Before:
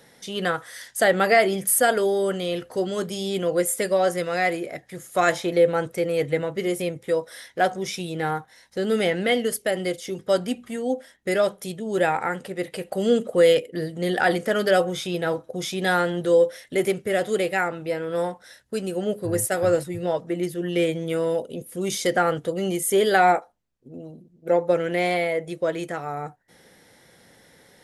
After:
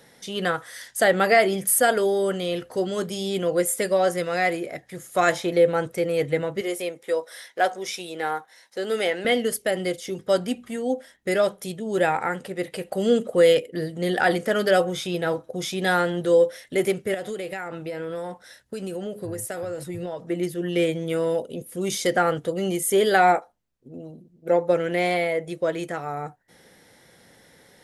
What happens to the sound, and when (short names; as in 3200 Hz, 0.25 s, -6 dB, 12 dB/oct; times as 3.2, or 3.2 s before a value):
6.61–9.25 HPF 390 Hz
17.14–20.24 compressor 12:1, threshold -27 dBFS